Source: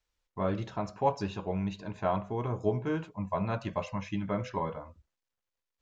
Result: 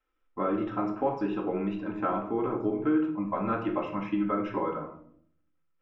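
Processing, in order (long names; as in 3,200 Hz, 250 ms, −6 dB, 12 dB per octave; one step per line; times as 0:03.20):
Savitzky-Golay smoothing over 25 samples
parametric band 86 Hz −12.5 dB 2.3 octaves
hollow resonant body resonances 320/1,300 Hz, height 13 dB, ringing for 25 ms
downward compressor, threshold −26 dBFS, peak gain reduction 8.5 dB
convolution reverb RT60 0.65 s, pre-delay 4 ms, DRR 1 dB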